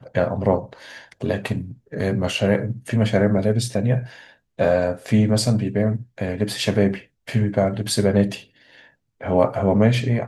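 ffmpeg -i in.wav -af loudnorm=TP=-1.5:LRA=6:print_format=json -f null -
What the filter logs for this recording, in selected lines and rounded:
"input_i" : "-20.9",
"input_tp" : "-3.0",
"input_lra" : "2.2",
"input_thresh" : "-31.7",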